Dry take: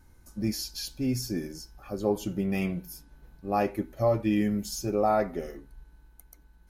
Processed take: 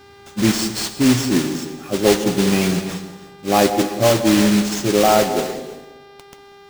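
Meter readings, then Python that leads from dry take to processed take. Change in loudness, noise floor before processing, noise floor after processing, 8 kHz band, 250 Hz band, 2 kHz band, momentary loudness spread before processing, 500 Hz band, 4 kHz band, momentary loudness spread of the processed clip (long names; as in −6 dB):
+12.0 dB, −57 dBFS, −44 dBFS, +16.0 dB, +12.5 dB, +16.0 dB, 17 LU, +11.0 dB, +16.5 dB, 15 LU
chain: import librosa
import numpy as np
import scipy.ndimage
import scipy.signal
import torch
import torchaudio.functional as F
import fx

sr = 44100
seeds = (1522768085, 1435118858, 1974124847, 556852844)

p1 = scipy.signal.sosfilt(scipy.signal.butter(4, 90.0, 'highpass', fs=sr, output='sos'), x)
p2 = fx.dynamic_eq(p1, sr, hz=330.0, q=0.82, threshold_db=-39.0, ratio=4.0, max_db=4)
p3 = fx.rider(p2, sr, range_db=10, speed_s=0.5)
p4 = p2 + F.gain(torch.from_numpy(p3), -0.5).numpy()
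p5 = fx.mod_noise(p4, sr, seeds[0], snr_db=10)
p6 = fx.sample_hold(p5, sr, seeds[1], rate_hz=13000.0, jitter_pct=0)
p7 = fx.dmg_buzz(p6, sr, base_hz=400.0, harmonics=14, level_db=-50.0, tilt_db=-5, odd_only=False)
p8 = p7 + fx.echo_bbd(p7, sr, ms=187, stages=1024, feedback_pct=35, wet_db=-11.0, dry=0)
p9 = fx.rev_gated(p8, sr, seeds[2], gate_ms=370, shape='flat', drr_db=10.0)
y = F.gain(torch.from_numpy(p9), 3.0).numpy()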